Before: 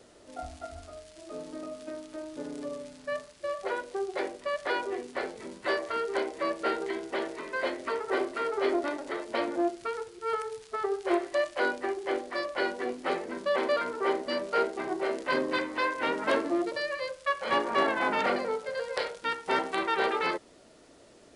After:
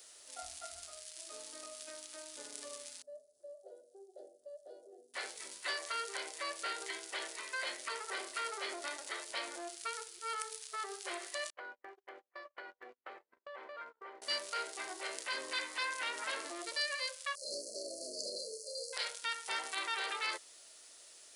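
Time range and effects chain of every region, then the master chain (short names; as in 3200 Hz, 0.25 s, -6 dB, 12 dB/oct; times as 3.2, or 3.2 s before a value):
3.02–5.14 elliptic low-pass 640 Hz + upward compressor, threshold -48 dBFS + tilt +4 dB/oct
11.5–14.22 gate -33 dBFS, range -40 dB + LPF 1400 Hz + compressor 10:1, threshold -34 dBFS
17.35–18.93 brick-wall FIR band-stop 680–4100 Hz + doubler 30 ms -6 dB
whole clip: bell 200 Hz -9.5 dB 1.3 oct; limiter -24.5 dBFS; pre-emphasis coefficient 0.97; gain +9.5 dB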